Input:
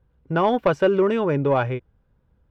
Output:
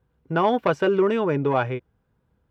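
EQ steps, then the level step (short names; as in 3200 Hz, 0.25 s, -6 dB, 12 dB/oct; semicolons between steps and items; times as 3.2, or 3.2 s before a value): HPF 130 Hz 6 dB/oct; notch 560 Hz, Q 12; 0.0 dB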